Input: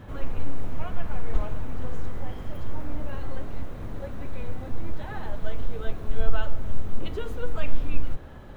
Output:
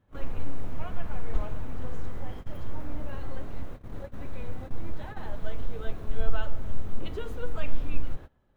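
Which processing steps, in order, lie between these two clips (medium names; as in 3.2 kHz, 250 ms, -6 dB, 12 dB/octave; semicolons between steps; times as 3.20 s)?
gate -31 dBFS, range -22 dB; trim -3 dB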